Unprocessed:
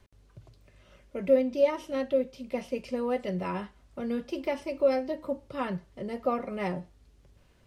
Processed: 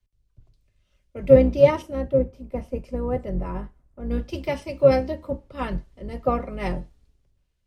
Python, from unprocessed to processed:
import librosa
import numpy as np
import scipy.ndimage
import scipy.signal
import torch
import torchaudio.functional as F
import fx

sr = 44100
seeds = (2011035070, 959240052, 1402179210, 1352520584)

y = fx.octave_divider(x, sr, octaves=2, level_db=1.0)
y = fx.peak_eq(y, sr, hz=3500.0, db=-11.0, octaves=2.0, at=(1.82, 4.11))
y = fx.band_widen(y, sr, depth_pct=70)
y = F.gain(torch.from_numpy(y), 3.0).numpy()